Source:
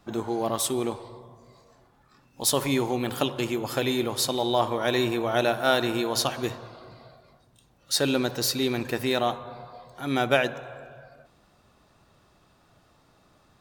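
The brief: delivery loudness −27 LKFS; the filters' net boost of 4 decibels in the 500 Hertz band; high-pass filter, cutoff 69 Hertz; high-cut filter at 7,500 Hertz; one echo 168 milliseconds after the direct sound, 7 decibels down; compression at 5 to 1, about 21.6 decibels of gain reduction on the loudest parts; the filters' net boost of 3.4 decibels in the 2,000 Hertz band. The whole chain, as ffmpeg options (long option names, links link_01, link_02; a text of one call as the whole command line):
ffmpeg -i in.wav -af "highpass=69,lowpass=7500,equalizer=frequency=500:width_type=o:gain=5,equalizer=frequency=2000:width_type=o:gain=4.5,acompressor=threshold=-38dB:ratio=5,aecho=1:1:168:0.447,volume=13dB" out.wav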